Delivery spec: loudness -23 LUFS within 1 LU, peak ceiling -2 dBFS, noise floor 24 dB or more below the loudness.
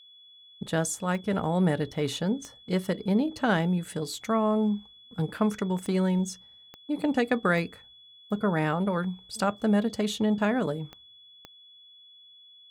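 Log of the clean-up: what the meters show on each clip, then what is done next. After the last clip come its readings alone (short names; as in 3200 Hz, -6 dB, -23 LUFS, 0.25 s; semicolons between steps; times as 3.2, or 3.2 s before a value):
clicks 7; steady tone 3400 Hz; tone level -51 dBFS; loudness -28.0 LUFS; peak -12.5 dBFS; loudness target -23.0 LUFS
-> de-click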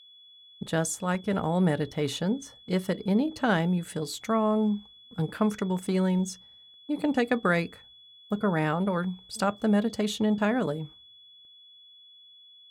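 clicks 0; steady tone 3400 Hz; tone level -51 dBFS
-> notch 3400 Hz, Q 30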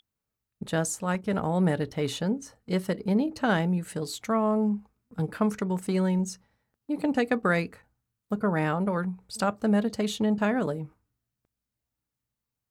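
steady tone none; loudness -28.0 LUFS; peak -12.5 dBFS; loudness target -23.0 LUFS
-> gain +5 dB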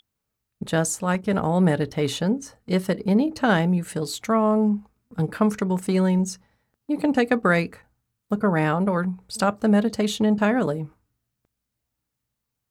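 loudness -23.0 LUFS; peak -7.5 dBFS; noise floor -82 dBFS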